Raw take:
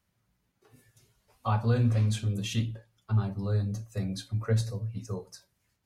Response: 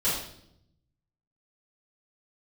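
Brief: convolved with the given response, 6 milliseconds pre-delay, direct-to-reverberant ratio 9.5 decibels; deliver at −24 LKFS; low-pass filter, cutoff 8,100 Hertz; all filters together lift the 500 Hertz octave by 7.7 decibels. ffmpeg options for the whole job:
-filter_complex "[0:a]lowpass=8100,equalizer=frequency=500:width_type=o:gain=8.5,asplit=2[link_01][link_02];[1:a]atrim=start_sample=2205,adelay=6[link_03];[link_02][link_03]afir=irnorm=-1:irlink=0,volume=-20dB[link_04];[link_01][link_04]amix=inputs=2:normalize=0,volume=4dB"

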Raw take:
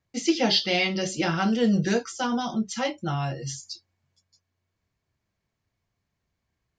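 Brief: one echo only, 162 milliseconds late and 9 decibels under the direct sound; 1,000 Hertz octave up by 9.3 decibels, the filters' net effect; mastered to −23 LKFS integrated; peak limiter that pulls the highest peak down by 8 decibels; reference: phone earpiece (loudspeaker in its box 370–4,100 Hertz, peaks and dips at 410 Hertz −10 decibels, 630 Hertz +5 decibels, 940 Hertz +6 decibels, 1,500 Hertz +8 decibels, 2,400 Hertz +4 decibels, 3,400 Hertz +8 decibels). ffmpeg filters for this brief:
ffmpeg -i in.wav -af "equalizer=frequency=1000:width_type=o:gain=7,alimiter=limit=-16.5dB:level=0:latency=1,highpass=370,equalizer=frequency=410:width_type=q:width=4:gain=-10,equalizer=frequency=630:width_type=q:width=4:gain=5,equalizer=frequency=940:width_type=q:width=4:gain=6,equalizer=frequency=1500:width_type=q:width=4:gain=8,equalizer=frequency=2400:width_type=q:width=4:gain=4,equalizer=frequency=3400:width_type=q:width=4:gain=8,lowpass=frequency=4100:width=0.5412,lowpass=frequency=4100:width=1.3066,aecho=1:1:162:0.355,volume=1.5dB" out.wav

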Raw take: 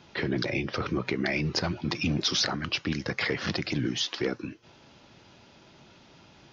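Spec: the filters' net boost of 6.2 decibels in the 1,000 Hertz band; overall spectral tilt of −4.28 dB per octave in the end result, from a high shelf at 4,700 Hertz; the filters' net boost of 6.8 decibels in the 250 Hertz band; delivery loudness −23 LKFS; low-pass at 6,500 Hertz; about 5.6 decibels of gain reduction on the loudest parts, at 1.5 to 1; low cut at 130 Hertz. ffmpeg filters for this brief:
ffmpeg -i in.wav -af "highpass=130,lowpass=6500,equalizer=frequency=250:width_type=o:gain=9,equalizer=frequency=1000:width_type=o:gain=7.5,highshelf=frequency=4700:gain=7.5,acompressor=threshold=-34dB:ratio=1.5,volume=7dB" out.wav

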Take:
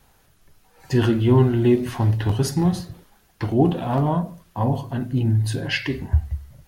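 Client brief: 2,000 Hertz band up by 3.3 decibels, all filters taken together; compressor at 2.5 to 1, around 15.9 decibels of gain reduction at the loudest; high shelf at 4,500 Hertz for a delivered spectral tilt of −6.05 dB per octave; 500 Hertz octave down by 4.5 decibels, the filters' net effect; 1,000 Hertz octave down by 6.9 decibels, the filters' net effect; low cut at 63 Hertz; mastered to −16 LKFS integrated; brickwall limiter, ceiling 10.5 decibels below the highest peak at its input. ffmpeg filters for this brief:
ffmpeg -i in.wav -af "highpass=63,equalizer=frequency=500:width_type=o:gain=-6,equalizer=frequency=1000:width_type=o:gain=-8,equalizer=frequency=2000:width_type=o:gain=6,highshelf=frequency=4500:gain=3.5,acompressor=threshold=-38dB:ratio=2.5,volume=24dB,alimiter=limit=-7.5dB:level=0:latency=1" out.wav

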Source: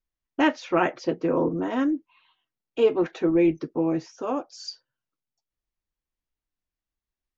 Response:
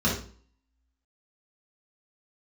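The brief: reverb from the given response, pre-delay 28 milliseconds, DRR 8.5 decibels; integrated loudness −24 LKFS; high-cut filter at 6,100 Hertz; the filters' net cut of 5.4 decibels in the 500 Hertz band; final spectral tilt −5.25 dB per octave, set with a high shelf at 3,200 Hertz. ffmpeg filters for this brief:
-filter_complex "[0:a]lowpass=6100,equalizer=frequency=500:width_type=o:gain=-7.5,highshelf=frequency=3200:gain=5,asplit=2[link_01][link_02];[1:a]atrim=start_sample=2205,adelay=28[link_03];[link_02][link_03]afir=irnorm=-1:irlink=0,volume=-21dB[link_04];[link_01][link_04]amix=inputs=2:normalize=0,volume=2.5dB"

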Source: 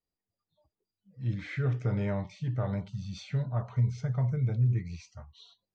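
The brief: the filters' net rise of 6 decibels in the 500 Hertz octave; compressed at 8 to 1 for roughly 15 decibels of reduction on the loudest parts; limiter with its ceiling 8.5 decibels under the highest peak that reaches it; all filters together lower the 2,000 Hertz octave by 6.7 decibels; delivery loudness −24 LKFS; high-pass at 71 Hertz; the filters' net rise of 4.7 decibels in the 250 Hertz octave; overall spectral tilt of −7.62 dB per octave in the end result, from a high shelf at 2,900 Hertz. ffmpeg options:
ffmpeg -i in.wav -af "highpass=71,equalizer=frequency=250:width_type=o:gain=7,equalizer=frequency=500:width_type=o:gain=6,equalizer=frequency=2000:width_type=o:gain=-6.5,highshelf=frequency=2900:gain=-5.5,acompressor=threshold=-37dB:ratio=8,volume=21.5dB,alimiter=limit=-15dB:level=0:latency=1" out.wav

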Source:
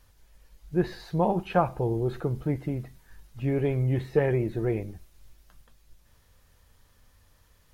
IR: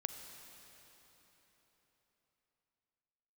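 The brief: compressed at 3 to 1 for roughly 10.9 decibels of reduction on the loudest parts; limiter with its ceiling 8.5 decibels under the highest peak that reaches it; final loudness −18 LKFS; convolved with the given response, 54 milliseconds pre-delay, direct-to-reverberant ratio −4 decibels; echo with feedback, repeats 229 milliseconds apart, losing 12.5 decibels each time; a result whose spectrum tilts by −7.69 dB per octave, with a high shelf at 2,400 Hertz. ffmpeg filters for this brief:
-filter_complex "[0:a]highshelf=frequency=2400:gain=-6,acompressor=threshold=-33dB:ratio=3,alimiter=level_in=4dB:limit=-24dB:level=0:latency=1,volume=-4dB,aecho=1:1:229|458|687:0.237|0.0569|0.0137,asplit=2[link_01][link_02];[1:a]atrim=start_sample=2205,adelay=54[link_03];[link_02][link_03]afir=irnorm=-1:irlink=0,volume=4.5dB[link_04];[link_01][link_04]amix=inputs=2:normalize=0,volume=15dB"

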